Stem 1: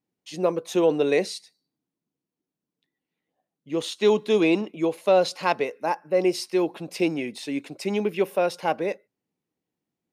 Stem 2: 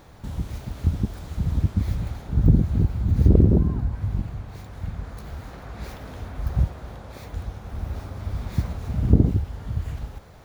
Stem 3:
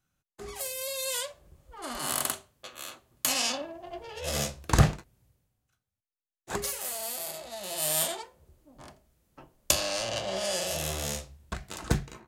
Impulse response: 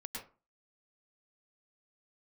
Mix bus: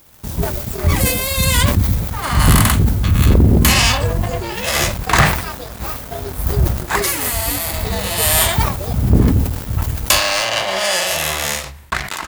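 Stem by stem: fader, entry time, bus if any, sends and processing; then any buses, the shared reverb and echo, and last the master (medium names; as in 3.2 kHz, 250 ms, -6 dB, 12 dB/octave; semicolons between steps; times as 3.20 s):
-9.0 dB, 0.00 s, no send, frequency axis rescaled in octaves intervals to 127%; compression, threshold -28 dBFS, peak gain reduction 12 dB
-7.5 dB, 0.00 s, send -3.5 dB, treble shelf 9.4 kHz +10.5 dB; bit crusher 8-bit
-5.0 dB, 0.40 s, no send, ten-band graphic EQ 1 kHz +10 dB, 2 kHz +12 dB, 4 kHz +4 dB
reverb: on, RT60 0.35 s, pre-delay 98 ms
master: treble shelf 9.5 kHz +11.5 dB; waveshaping leveller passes 3; decay stretcher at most 73 dB/s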